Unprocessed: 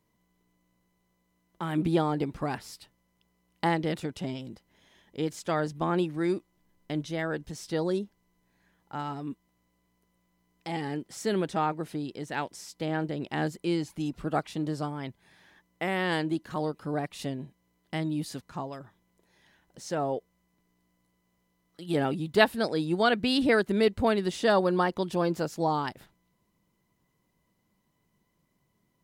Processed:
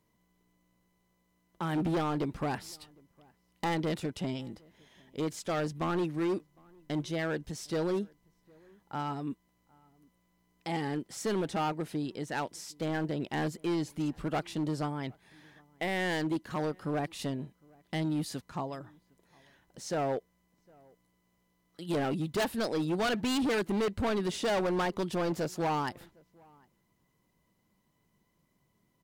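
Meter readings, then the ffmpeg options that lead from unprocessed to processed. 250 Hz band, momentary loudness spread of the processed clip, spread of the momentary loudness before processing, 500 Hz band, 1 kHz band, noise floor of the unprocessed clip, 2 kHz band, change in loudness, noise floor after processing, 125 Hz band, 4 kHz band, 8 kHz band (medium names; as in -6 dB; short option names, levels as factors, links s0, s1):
-2.5 dB, 10 LU, 14 LU, -4.0 dB, -4.0 dB, -74 dBFS, -4.5 dB, -3.5 dB, -74 dBFS, -2.0 dB, -3.5 dB, +1.0 dB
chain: -filter_complex "[0:a]volume=21.1,asoftclip=hard,volume=0.0473,asplit=2[s0][s1];[s1]adelay=758,volume=0.0398,highshelf=f=4000:g=-17.1[s2];[s0][s2]amix=inputs=2:normalize=0"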